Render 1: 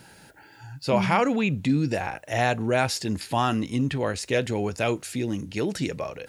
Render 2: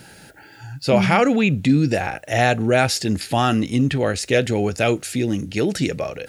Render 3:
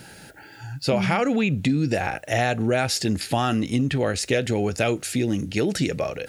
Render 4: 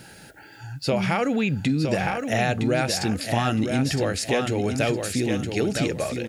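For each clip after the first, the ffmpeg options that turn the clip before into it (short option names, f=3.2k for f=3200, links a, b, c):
-af "equalizer=f=1k:w=6.1:g=-11.5,volume=6.5dB"
-af "acompressor=threshold=-18dB:ratio=6"
-af "aecho=1:1:963|1926|2889:0.501|0.13|0.0339,volume=-1.5dB"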